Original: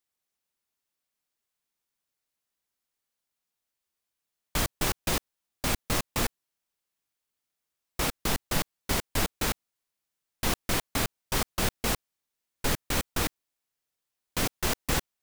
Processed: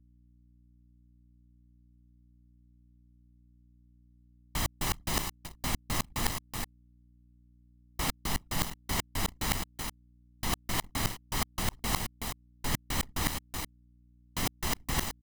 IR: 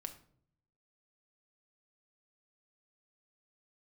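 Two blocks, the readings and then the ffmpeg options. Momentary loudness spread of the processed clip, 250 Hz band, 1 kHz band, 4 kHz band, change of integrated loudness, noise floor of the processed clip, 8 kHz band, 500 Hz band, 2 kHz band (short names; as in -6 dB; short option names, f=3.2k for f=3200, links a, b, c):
8 LU, -3.5 dB, -2.0 dB, -3.0 dB, -4.0 dB, -62 dBFS, -3.0 dB, -7.5 dB, -4.0 dB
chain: -filter_complex "[0:a]aecho=1:1:376:0.0891,asplit=2[a][b];[b]alimiter=limit=-19dB:level=0:latency=1:release=28,volume=2dB[c];[a][c]amix=inputs=2:normalize=0,aeval=exprs='val(0)*gte(abs(val(0)),0.01)':c=same,areverse,acompressor=threshold=-34dB:ratio=16,areverse,anlmdn=0.0158,aecho=1:1:1:0.49,aeval=exprs='val(0)+0.000562*(sin(2*PI*60*n/s)+sin(2*PI*2*60*n/s)/2+sin(2*PI*3*60*n/s)/3+sin(2*PI*4*60*n/s)/4+sin(2*PI*5*60*n/s)/5)':c=same,volume=5dB"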